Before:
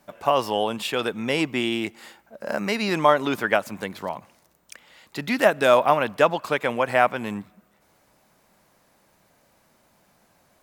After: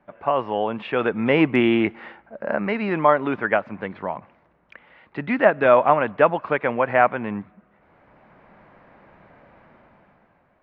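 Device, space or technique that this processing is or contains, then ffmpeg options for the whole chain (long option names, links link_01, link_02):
action camera in a waterproof case: -af "lowpass=frequency=2300:width=0.5412,lowpass=frequency=2300:width=1.3066,dynaudnorm=framelen=160:gausssize=11:maxgain=13dB,volume=-1dB" -ar 22050 -c:a aac -b:a 64k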